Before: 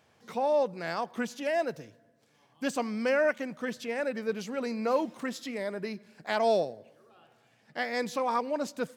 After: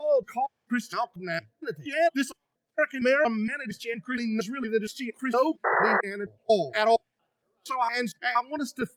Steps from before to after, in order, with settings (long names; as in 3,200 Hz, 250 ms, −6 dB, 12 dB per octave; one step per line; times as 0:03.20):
slices reordered back to front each 232 ms, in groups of 3
noise reduction from a noise print of the clip's start 20 dB
sound drawn into the spectrogram noise, 0:05.64–0:06.01, 360–2,000 Hz −29 dBFS
level +6 dB
Opus 48 kbit/s 48,000 Hz